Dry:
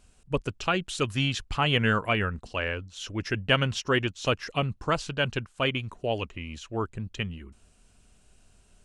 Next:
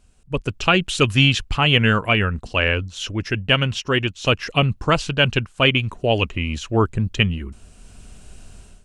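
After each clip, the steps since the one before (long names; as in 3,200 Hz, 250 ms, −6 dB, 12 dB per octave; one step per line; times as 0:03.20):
dynamic equaliser 2,700 Hz, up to +6 dB, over −43 dBFS, Q 2.1
automatic gain control gain up to 15 dB
low-shelf EQ 280 Hz +4.5 dB
level −1 dB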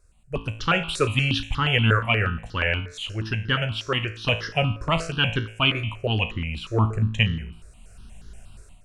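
tuned comb filter 55 Hz, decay 0.56 s, harmonics all, mix 70%
step-sequenced phaser 8.4 Hz 820–2,500 Hz
level +5 dB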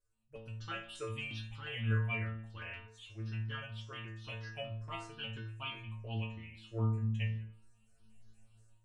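stiff-string resonator 110 Hz, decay 0.56 s, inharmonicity 0.002
level −7 dB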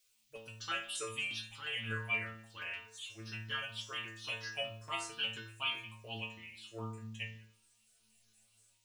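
speech leveller within 4 dB 2 s
RIAA equalisation recording
noise in a band 2,200–7,300 Hz −78 dBFS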